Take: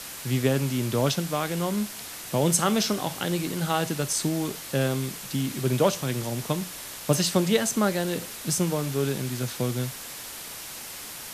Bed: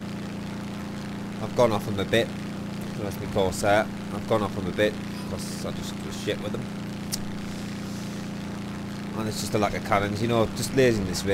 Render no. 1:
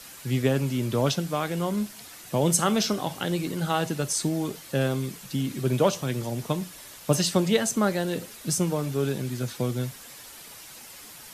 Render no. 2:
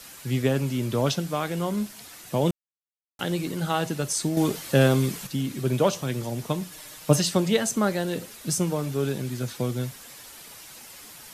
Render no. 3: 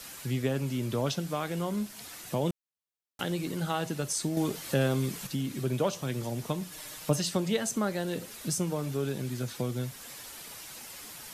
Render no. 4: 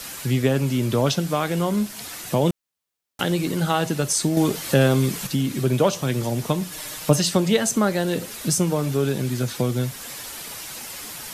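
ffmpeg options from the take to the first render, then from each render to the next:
-af "afftdn=nr=8:nf=-39"
-filter_complex "[0:a]asettb=1/sr,asplit=3[s0][s1][s2];[s0]atrim=end=6.714[s3];[s1]atrim=start=6.71:end=7.2,asetpts=PTS-STARTPTS,afade=t=in:d=0.004:c=qsin,afade=t=out:st=0.486:d=0.004:c=qsin,aecho=1:1:6.5:0.65,atrim=end_sample=21609[s4];[s2]atrim=start=7.196[s5];[s3][s4]acrossfade=d=0.004:c1=hsin:c2=qsin[s6];[s6][s5]acrossfade=d=0.004:c1=qsin:c2=hsin,asplit=5[s7][s8][s9][s10][s11];[s7]atrim=end=2.51,asetpts=PTS-STARTPTS,afade=t=out:st=2.506:d=0.004:c=hsin[s12];[s8]atrim=start=2.51:end=3.19,asetpts=PTS-STARTPTS,volume=0[s13];[s9]atrim=start=3.19:end=4.372,asetpts=PTS-STARTPTS,afade=t=in:d=0.004:c=hsin[s14];[s10]atrim=start=4.368:end=5.272,asetpts=PTS-STARTPTS,volume=2.11[s15];[s11]atrim=start=5.268[s16];[s12][s13][s14]concat=n=3:v=0:a=1[s17];[s17][s15]acrossfade=d=0.004:c1=hsin:c2=hsin[s18];[s18][s16]acrossfade=d=0.004:c1=hsin:c2=hsin"
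-af "acompressor=threshold=0.0158:ratio=1.5"
-af "volume=2.99"

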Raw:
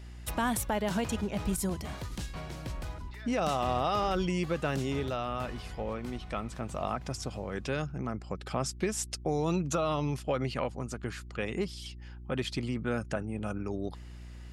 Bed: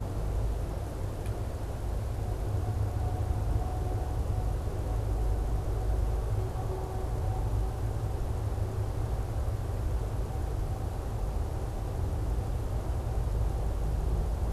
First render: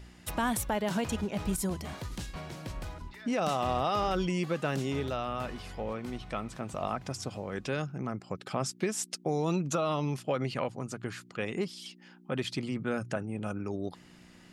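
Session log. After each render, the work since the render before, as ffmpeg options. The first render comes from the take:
-af "bandreject=f=60:t=h:w=4,bandreject=f=120:t=h:w=4"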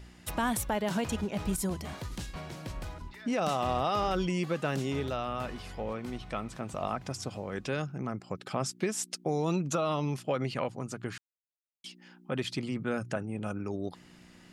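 -filter_complex "[0:a]asplit=3[s0][s1][s2];[s0]atrim=end=11.18,asetpts=PTS-STARTPTS,afade=t=out:st=11.176:d=0.004:c=hsin[s3];[s1]atrim=start=11.18:end=11.84,asetpts=PTS-STARTPTS,volume=0[s4];[s2]atrim=start=11.84,asetpts=PTS-STARTPTS,afade=t=in:d=0.004:c=hsin[s5];[s3][s4][s5]concat=n=3:v=0:a=1"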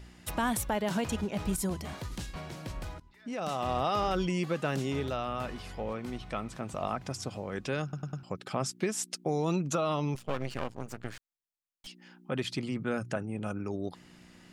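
-filter_complex "[0:a]asettb=1/sr,asplit=3[s0][s1][s2];[s0]atrim=end=10.154[s3];[s1]atrim=start=10.15:end=11.87,asetpts=PTS-STARTPTS,afade=t=in:d=0.004:c=qsin,afade=t=out:st=1.716:d=0.004:c=qsin,aeval=exprs='max(val(0),0)':c=same[s4];[s2]atrim=start=11.866[s5];[s3][s4]acrossfade=d=0.004:c1=hsin:c2=qsin[s6];[s6][s5]acrossfade=d=0.004:c1=qsin:c2=hsin,asplit=6[s7][s8][s9][s10][s11][s12];[s7]atrim=end=3,asetpts=PTS-STARTPTS,afade=t=out:st=2.996:d=0.004:c=hsin:silence=0.1[s13];[s8]atrim=start=3:end=7.932,asetpts=PTS-STARTPTS,afade=t=in:d=0.83:silence=0.1[s14];[s9]atrim=start=7.828:end=7.932[s15];[s10]atrim=start=7.828:end=7.932[s16];[s11]atrim=start=7.828:end=7.932[s17];[s12]atrim=start=8.228[s18];[s13][s14]concat=n=2:v=0:a=1[s19];[s19][s15]acrossfade=d=0.004:c1=hsin:c2=hsin[s20];[s20][s16]acrossfade=d=0.004:c1=hsin:c2=hsin[s21];[s21][s17]acrossfade=d=0.004:c1=hsin:c2=hsin[s22];[s22][s18]acrossfade=d=0.004:c1=hsin:c2=hsin"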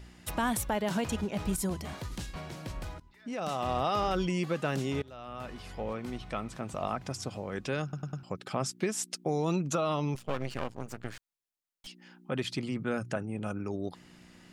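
-filter_complex "[0:a]asplit=2[s0][s1];[s0]atrim=end=5.02,asetpts=PTS-STARTPTS,afade=t=out:st=5.016:d=0.004:c=hsin:silence=0.0794328[s2];[s1]atrim=start=5.02,asetpts=PTS-STARTPTS,afade=t=in:d=0.8:silence=0.0794328[s3];[s2][s3]concat=n=2:v=0:a=1"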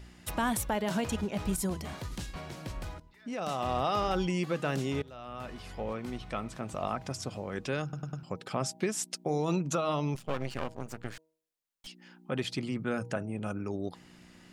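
-af "bandreject=f=158.8:t=h:w=4,bandreject=f=317.6:t=h:w=4,bandreject=f=476.4:t=h:w=4,bandreject=f=635.2:t=h:w=4,bandreject=f=794:t=h:w=4,bandreject=f=952.8:t=h:w=4"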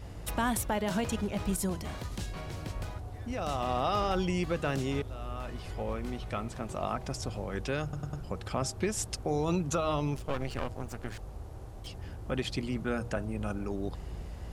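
-filter_complex "[1:a]volume=0.282[s0];[0:a][s0]amix=inputs=2:normalize=0"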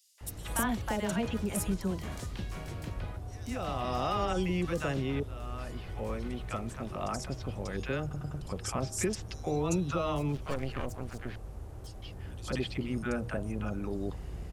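-filter_complex "[0:a]acrossover=split=790|4400[s0][s1][s2];[s1]adelay=180[s3];[s0]adelay=210[s4];[s4][s3][s2]amix=inputs=3:normalize=0"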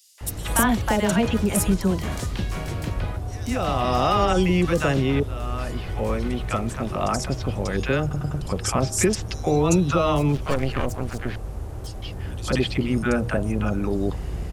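-af "volume=3.55"

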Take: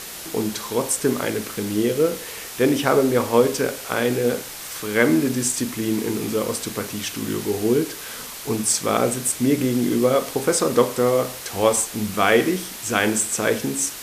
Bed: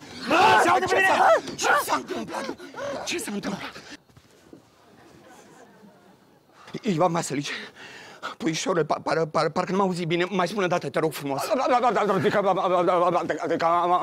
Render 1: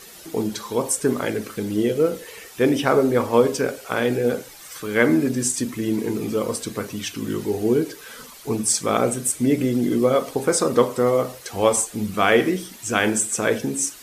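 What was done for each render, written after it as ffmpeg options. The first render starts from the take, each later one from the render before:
-af "afftdn=nr=11:nf=-35"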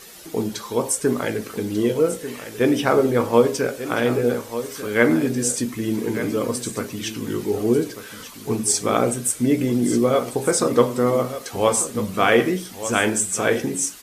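-filter_complex "[0:a]asplit=2[s0][s1];[s1]adelay=17,volume=0.251[s2];[s0][s2]amix=inputs=2:normalize=0,aecho=1:1:1192:0.251"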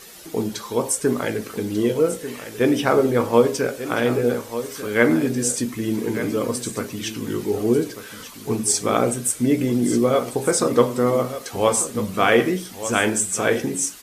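-af anull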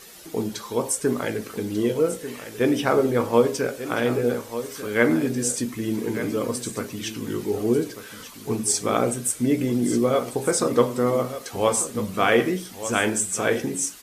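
-af "volume=0.75"

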